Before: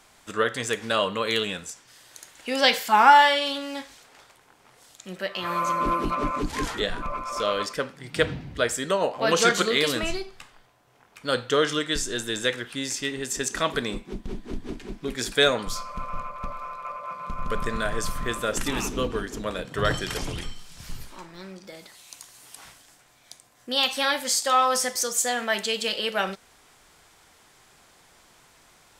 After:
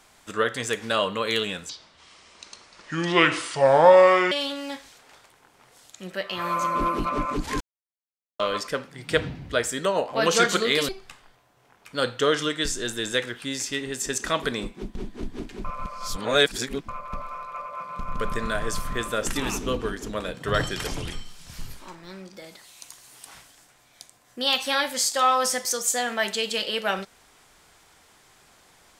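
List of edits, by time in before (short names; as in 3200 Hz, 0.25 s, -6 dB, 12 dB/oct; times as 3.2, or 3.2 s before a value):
1.69–3.37 speed 64%
6.66–7.45 mute
9.94–10.19 cut
14.95–16.19 reverse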